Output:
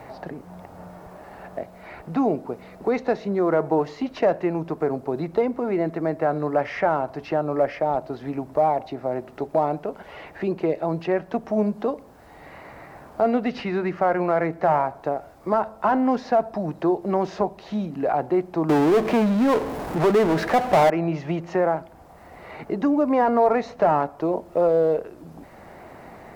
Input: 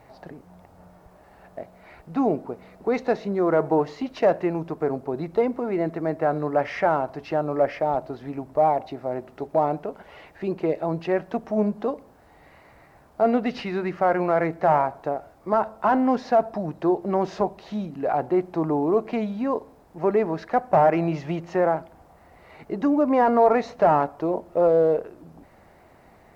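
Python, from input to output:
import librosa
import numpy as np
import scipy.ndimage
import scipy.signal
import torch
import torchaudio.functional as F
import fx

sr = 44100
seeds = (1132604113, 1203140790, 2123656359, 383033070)

y = fx.power_curve(x, sr, exponent=0.5, at=(18.69, 20.9))
y = fx.band_squash(y, sr, depth_pct=40)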